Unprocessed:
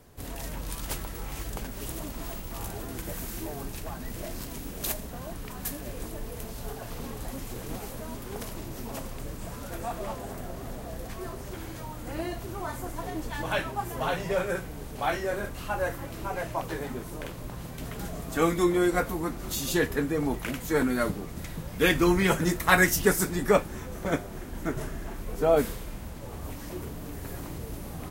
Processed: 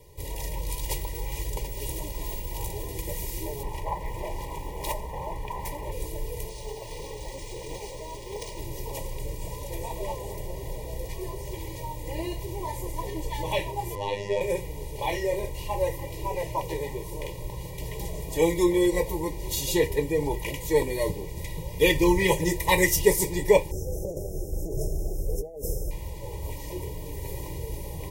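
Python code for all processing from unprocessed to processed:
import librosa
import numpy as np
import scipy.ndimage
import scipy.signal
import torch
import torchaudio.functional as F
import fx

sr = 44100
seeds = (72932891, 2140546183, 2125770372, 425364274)

y = fx.chain(x, sr, fx.curve_eq(hz=(550.0, 820.0, 4400.0), db=(0, 12, -7)),
    fx.doppler_dist(depth_ms=0.64), at=(3.63, 5.92))
y = fx.chain(y, sr, fx.bass_treble(bass_db=-6, treble_db=4),
    fx.resample_bad(factor=3, down='filtered', up='hold'), at=(6.49, 8.59))
y = fx.chain(y, sr, fx.lowpass(hz=6900.0, slope=12),
    fx.robotise(hz=101.0), at=(13.95, 14.41))
y = fx.chain(y, sr, fx.brickwall_bandstop(low_hz=820.0, high_hz=5100.0),
    fx.over_compress(threshold_db=-33.0, ratio=-1.0), at=(23.71, 25.91))
y = scipy.signal.sosfilt(scipy.signal.ellip(3, 1.0, 80, [1000.0, 2000.0], 'bandstop', fs=sr, output='sos'), y)
y = fx.peak_eq(y, sr, hz=1600.0, db=11.0, octaves=0.28)
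y = y + 0.92 * np.pad(y, (int(2.1 * sr / 1000.0), 0))[:len(y)]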